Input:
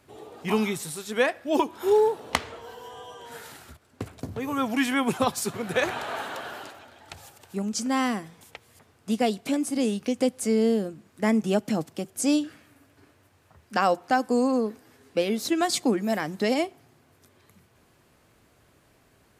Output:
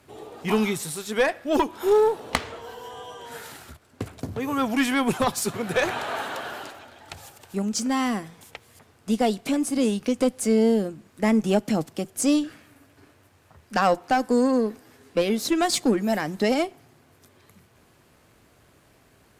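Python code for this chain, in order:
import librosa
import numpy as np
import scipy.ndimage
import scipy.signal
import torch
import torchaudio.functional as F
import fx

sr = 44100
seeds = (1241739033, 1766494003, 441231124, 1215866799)

y = np.where(x < 0.0, 10.0 ** (-3.0 / 20.0) * x, x)
y = fx.tube_stage(y, sr, drive_db=16.0, bias=0.55)
y = y * librosa.db_to_amplitude(7.0)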